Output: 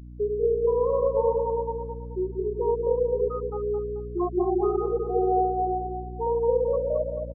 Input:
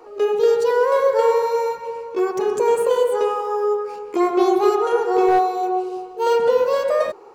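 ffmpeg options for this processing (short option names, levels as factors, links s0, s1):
-filter_complex "[0:a]afftfilt=real='re*gte(hypot(re,im),0.562)':imag='im*gte(hypot(re,im),0.562)':win_size=1024:overlap=0.75,aeval=exprs='val(0)+0.0224*(sin(2*PI*60*n/s)+sin(2*PI*2*60*n/s)/2+sin(2*PI*3*60*n/s)/3+sin(2*PI*4*60*n/s)/4+sin(2*PI*5*60*n/s)/5)':c=same,asplit=2[s0][s1];[s1]adelay=217,lowpass=f=1800:p=1,volume=0.531,asplit=2[s2][s3];[s3]adelay=217,lowpass=f=1800:p=1,volume=0.38,asplit=2[s4][s5];[s5]adelay=217,lowpass=f=1800:p=1,volume=0.38,asplit=2[s6][s7];[s7]adelay=217,lowpass=f=1800:p=1,volume=0.38,asplit=2[s8][s9];[s9]adelay=217,lowpass=f=1800:p=1,volume=0.38[s10];[s0][s2][s4][s6][s8][s10]amix=inputs=6:normalize=0,volume=0.422"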